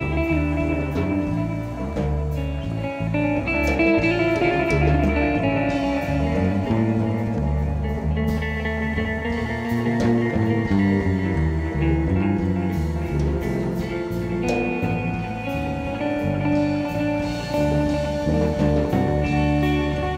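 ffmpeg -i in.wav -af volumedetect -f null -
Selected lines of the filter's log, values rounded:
mean_volume: -21.4 dB
max_volume: -7.2 dB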